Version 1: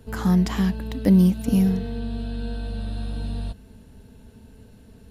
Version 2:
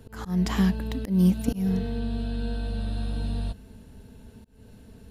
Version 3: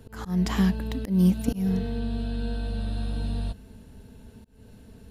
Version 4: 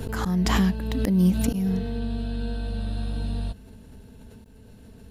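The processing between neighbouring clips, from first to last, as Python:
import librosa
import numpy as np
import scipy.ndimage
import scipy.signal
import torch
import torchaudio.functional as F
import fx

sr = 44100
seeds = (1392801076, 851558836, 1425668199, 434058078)

y1 = fx.auto_swell(x, sr, attack_ms=249.0)
y2 = y1
y3 = fx.pre_swell(y2, sr, db_per_s=29.0)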